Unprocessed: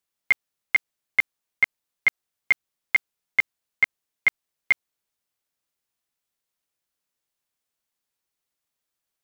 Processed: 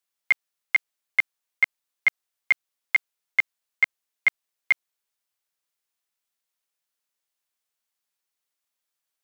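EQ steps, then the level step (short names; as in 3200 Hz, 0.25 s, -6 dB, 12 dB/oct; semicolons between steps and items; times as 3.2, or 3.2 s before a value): low shelf 380 Hz -11.5 dB; 0.0 dB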